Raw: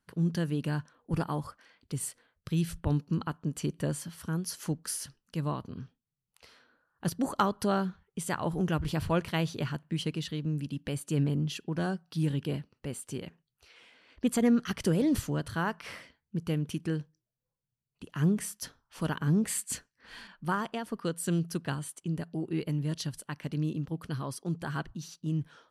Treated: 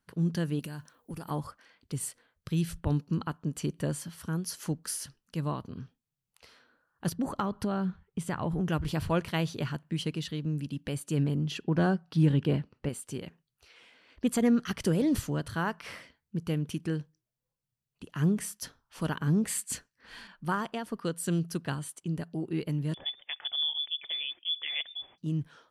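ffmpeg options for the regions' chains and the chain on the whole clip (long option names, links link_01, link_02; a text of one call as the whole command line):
ffmpeg -i in.wav -filter_complex "[0:a]asettb=1/sr,asplit=3[link_01][link_02][link_03];[link_01]atrim=end=0.594[link_04];[link_02]atrim=start=0.59:end=1.31,asetpts=PTS-STARTPTS,afade=type=in:duration=0.004:curve=qsin,afade=type=out:start_time=0.716:duration=0.004:curve=qsin,aemphasis=mode=production:type=50fm,acompressor=threshold=-35dB:ratio=12:attack=3.2:release=140:knee=1:detection=peak,aeval=exprs='clip(val(0),-1,0.0282)':channel_layout=same[link_05];[link_03]atrim=start=1.306[link_06];[link_04][link_05]acrossfade=duration=0.004:curve1=hsin:curve2=qsin[link_07];[link_07][link_06]acrossfade=duration=0.004:curve1=qsin:curve2=hsin,asettb=1/sr,asplit=3[link_08][link_09][link_10];[link_08]atrim=end=7.134[link_11];[link_09]atrim=start=7.13:end=8.68,asetpts=PTS-STARTPTS,afade=type=in:duration=0.004:curve=qsin,afade=type=out:start_time=1.546:duration=0.004:curve=qsin,bass=frequency=250:gain=6,treble=frequency=4000:gain=-7,acompressor=threshold=-26dB:ratio=4:attack=3.2:release=140:knee=1:detection=peak[link_12];[link_10]atrim=start=8.676[link_13];[link_11][link_12]acrossfade=duration=0.004:curve1=hsin:curve2=qsin[link_14];[link_14][link_13]acrossfade=duration=0.004:curve1=qsin:curve2=hsin,asettb=1/sr,asplit=3[link_15][link_16][link_17];[link_15]atrim=end=11.514[link_18];[link_16]atrim=start=11.51:end=12.89,asetpts=PTS-STARTPTS,afade=type=in:duration=0.004:curve=qsin,afade=type=out:start_time=1.376:duration=0.004:curve=qsin,lowpass=frequency=2400:poles=1,acontrast=47[link_19];[link_17]atrim=start=12.886[link_20];[link_18][link_19]acrossfade=duration=0.004:curve1=hsin:curve2=qsin[link_21];[link_21][link_20]acrossfade=duration=0.004:curve1=qsin:curve2=hsin,asettb=1/sr,asplit=3[link_22][link_23][link_24];[link_22]atrim=end=22.944[link_25];[link_23]atrim=start=22.94:end=25.18,asetpts=PTS-STARTPTS,afade=type=in:duration=0.004:curve=qsin,afade=type=out:start_time=2.236:duration=0.004:curve=qsin,acompressor=mode=upward:threshold=-41dB:ratio=2.5:attack=3.2:release=140:knee=2.83:detection=peak,lowpass=frequency=3100:width_type=q:width=0.5098,lowpass=frequency=3100:width_type=q:width=0.6013,lowpass=frequency=3100:width_type=q:width=0.9,lowpass=frequency=3100:width_type=q:width=2.563,afreqshift=-3600[link_26];[link_24]atrim=start=25.176[link_27];[link_25][link_26]acrossfade=duration=0.004:curve1=hsin:curve2=qsin[link_28];[link_28][link_27]acrossfade=duration=0.004:curve1=qsin:curve2=hsin" out.wav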